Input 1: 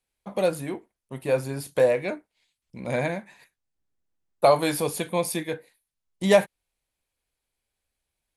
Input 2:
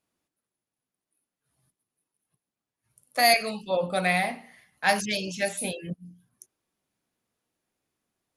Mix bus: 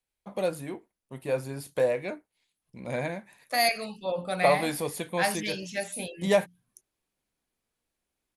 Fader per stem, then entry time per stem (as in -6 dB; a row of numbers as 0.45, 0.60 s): -5.0, -4.5 dB; 0.00, 0.35 s